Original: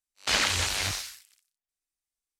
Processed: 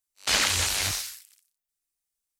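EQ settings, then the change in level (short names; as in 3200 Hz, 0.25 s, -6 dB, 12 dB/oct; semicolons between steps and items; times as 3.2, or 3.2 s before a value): high shelf 7900 Hz +10 dB; 0.0 dB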